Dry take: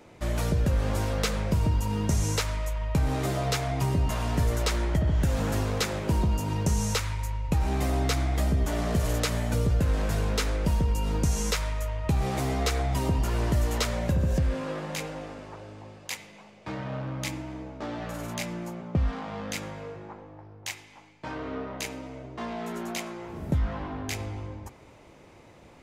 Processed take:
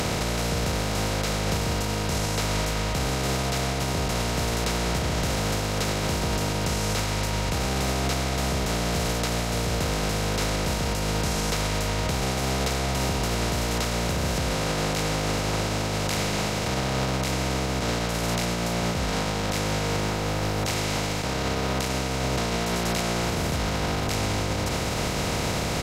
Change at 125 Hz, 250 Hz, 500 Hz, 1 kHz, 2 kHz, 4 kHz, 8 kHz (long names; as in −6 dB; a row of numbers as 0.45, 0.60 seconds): +0.5, +3.5, +5.0, +6.5, +7.5, +8.5, +7.0 decibels